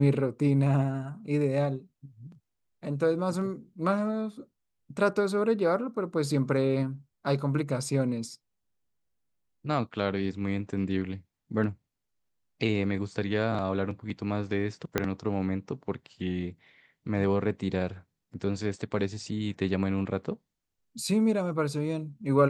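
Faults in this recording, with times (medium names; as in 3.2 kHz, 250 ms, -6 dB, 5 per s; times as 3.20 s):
14.98 s: pop -10 dBFS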